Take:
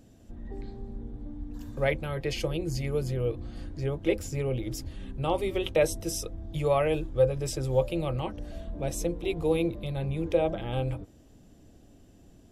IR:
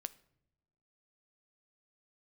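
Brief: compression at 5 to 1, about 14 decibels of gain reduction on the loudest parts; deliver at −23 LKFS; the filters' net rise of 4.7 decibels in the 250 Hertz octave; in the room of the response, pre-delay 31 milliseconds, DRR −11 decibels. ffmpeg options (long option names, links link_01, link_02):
-filter_complex "[0:a]equalizer=frequency=250:width_type=o:gain=7.5,acompressor=threshold=-33dB:ratio=5,asplit=2[link_01][link_02];[1:a]atrim=start_sample=2205,adelay=31[link_03];[link_02][link_03]afir=irnorm=-1:irlink=0,volume=14dB[link_04];[link_01][link_04]amix=inputs=2:normalize=0,volume=3dB"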